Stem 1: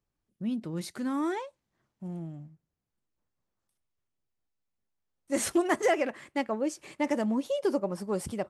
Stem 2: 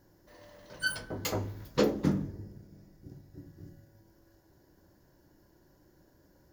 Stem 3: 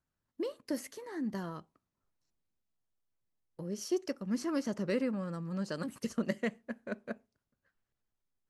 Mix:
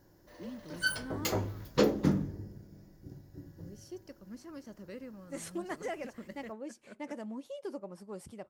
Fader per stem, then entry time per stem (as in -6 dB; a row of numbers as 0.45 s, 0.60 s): -13.0 dB, +0.5 dB, -13.5 dB; 0.00 s, 0.00 s, 0.00 s